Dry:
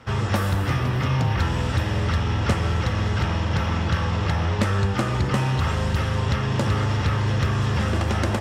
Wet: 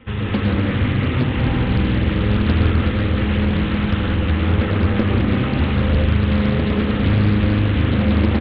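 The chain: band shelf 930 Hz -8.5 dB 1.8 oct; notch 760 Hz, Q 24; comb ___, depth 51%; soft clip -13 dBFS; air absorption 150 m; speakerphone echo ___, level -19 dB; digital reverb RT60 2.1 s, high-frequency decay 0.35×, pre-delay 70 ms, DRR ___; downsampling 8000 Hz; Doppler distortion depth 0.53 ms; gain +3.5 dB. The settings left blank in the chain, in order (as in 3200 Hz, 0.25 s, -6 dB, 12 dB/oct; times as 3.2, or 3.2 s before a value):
3.9 ms, 90 ms, -2 dB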